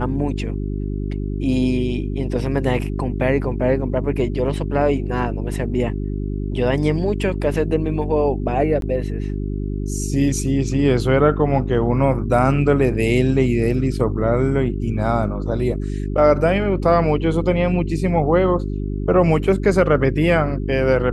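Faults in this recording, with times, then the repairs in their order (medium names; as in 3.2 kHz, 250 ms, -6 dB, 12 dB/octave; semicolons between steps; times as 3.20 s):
hum 50 Hz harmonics 8 -24 dBFS
8.81–8.82 s: dropout 12 ms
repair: de-hum 50 Hz, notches 8; interpolate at 8.81 s, 12 ms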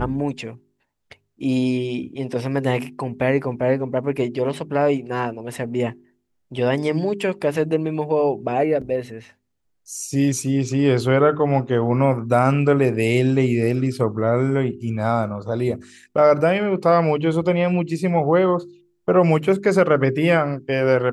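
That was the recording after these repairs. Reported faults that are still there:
nothing left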